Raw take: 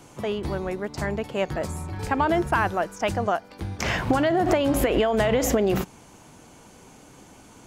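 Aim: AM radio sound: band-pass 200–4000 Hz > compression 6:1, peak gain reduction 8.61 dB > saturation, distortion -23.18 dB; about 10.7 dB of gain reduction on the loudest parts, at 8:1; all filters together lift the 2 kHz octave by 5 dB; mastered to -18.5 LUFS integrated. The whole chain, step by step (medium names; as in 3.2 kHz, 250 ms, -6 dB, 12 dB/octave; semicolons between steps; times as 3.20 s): peaking EQ 2 kHz +6.5 dB; compression 8:1, threshold -28 dBFS; band-pass 200–4000 Hz; compression 6:1, threshold -34 dBFS; saturation -25 dBFS; trim +21.5 dB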